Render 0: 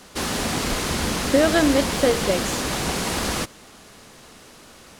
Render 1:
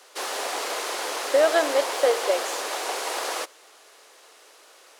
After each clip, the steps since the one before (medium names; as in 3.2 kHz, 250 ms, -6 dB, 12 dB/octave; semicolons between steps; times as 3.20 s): dynamic bell 740 Hz, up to +6 dB, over -32 dBFS, Q 0.81; inverse Chebyshev high-pass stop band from 200 Hz, stop band 40 dB; trim -4.5 dB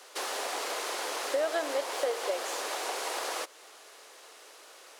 compression 2:1, threshold -35 dBFS, peak gain reduction 11 dB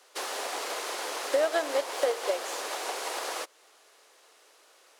upward expansion 1.5:1, over -49 dBFS; trim +4.5 dB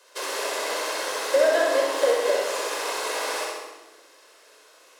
on a send: flutter echo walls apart 11.1 m, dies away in 0.88 s; on the sum: simulated room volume 3700 m³, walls furnished, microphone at 5.2 m